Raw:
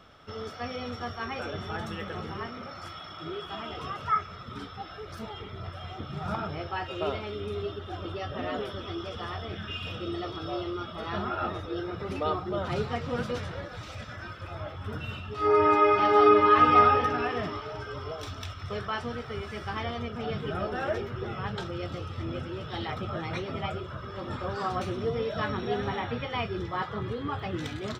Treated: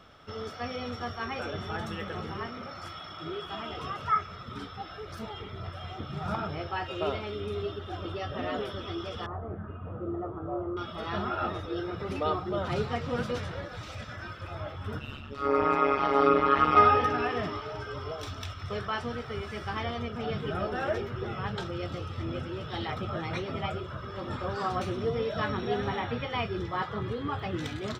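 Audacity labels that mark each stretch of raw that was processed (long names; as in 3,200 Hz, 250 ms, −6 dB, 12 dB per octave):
9.260000	10.770000	low-pass filter 1,200 Hz 24 dB per octave
14.990000	16.770000	amplitude modulation modulator 140 Hz, depth 85%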